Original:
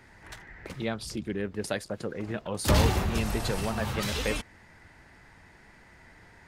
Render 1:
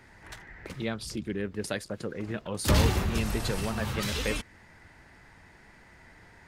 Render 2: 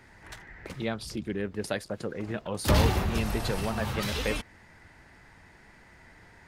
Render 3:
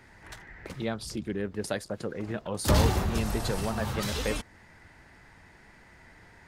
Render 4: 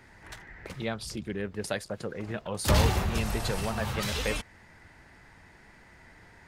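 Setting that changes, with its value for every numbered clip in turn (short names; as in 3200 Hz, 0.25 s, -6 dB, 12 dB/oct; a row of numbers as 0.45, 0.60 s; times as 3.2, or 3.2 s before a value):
dynamic EQ, frequency: 740, 7500, 2500, 290 Hz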